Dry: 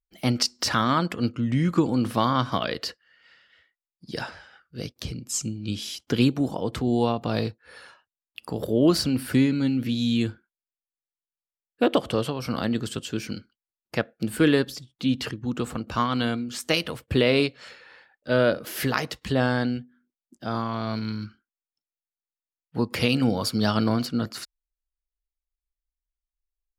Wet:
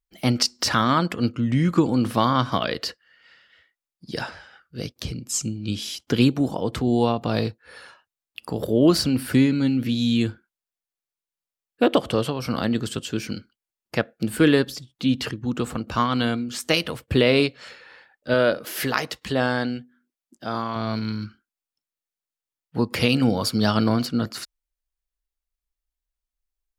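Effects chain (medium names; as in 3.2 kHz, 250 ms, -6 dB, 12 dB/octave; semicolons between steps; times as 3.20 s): 18.34–20.76 s: bass shelf 210 Hz -8 dB; trim +2.5 dB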